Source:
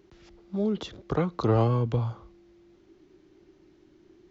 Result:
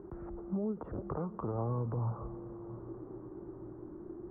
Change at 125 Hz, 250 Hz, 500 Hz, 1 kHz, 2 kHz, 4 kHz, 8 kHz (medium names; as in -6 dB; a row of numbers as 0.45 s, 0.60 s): -9.0 dB, -7.5 dB, -9.5 dB, -9.0 dB, under -15 dB, under -40 dB, no reading